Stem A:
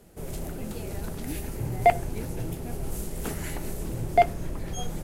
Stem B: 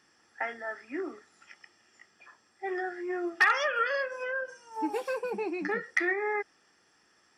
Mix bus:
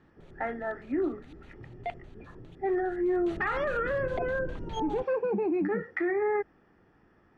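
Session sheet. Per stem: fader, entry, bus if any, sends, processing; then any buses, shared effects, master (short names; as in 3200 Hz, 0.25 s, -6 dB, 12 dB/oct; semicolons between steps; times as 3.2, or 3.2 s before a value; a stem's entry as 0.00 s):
3.06 s -17.5 dB -> 3.4 s -5.5 dB, 0.00 s, no send, LPF 11000 Hz; LFO low-pass square 4.9 Hz 370–3600 Hz; notch 5100 Hz, Q 6.3
+2.5 dB, 0.00 s, no send, LPF 2600 Hz 12 dB/oct; tilt -4.5 dB/oct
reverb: off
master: limiter -22 dBFS, peak gain reduction 9.5 dB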